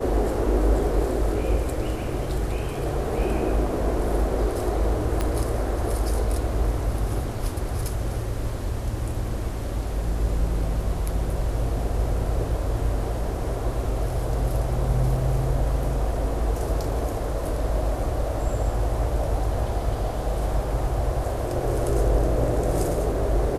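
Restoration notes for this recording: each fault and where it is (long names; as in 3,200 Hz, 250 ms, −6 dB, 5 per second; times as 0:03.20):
0:05.21: click −11 dBFS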